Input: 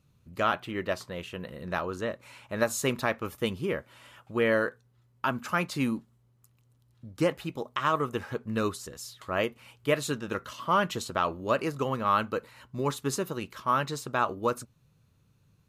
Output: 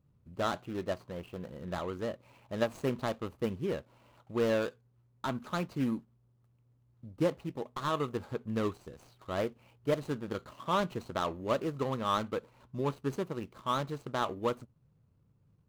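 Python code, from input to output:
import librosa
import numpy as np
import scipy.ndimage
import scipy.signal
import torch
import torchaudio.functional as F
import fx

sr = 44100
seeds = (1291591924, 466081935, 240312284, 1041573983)

y = scipy.signal.medfilt(x, 25)
y = y * librosa.db_to_amplitude(-2.5)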